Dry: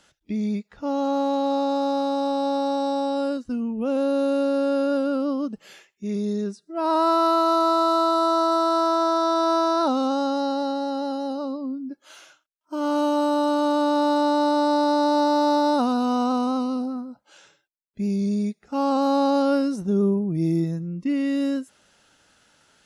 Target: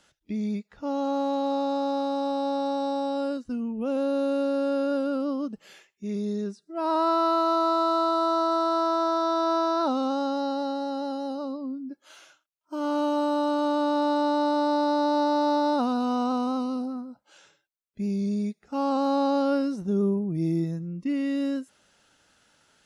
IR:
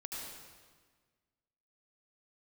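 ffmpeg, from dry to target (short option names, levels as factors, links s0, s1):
-filter_complex "[0:a]acrossover=split=5500[s0][s1];[s1]acompressor=threshold=0.00251:ratio=4:attack=1:release=60[s2];[s0][s2]amix=inputs=2:normalize=0,volume=0.668"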